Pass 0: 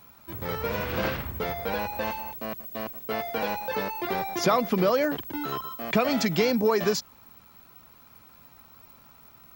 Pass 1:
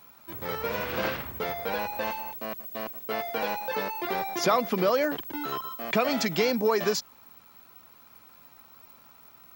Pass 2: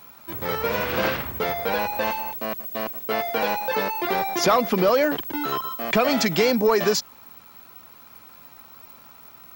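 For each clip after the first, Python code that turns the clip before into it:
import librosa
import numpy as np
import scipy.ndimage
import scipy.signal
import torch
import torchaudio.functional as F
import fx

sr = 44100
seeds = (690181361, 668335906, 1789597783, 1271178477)

y1 = fx.low_shelf(x, sr, hz=160.0, db=-11.0)
y2 = 10.0 ** (-16.5 / 20.0) * np.tanh(y1 / 10.0 ** (-16.5 / 20.0))
y2 = F.gain(torch.from_numpy(y2), 6.5).numpy()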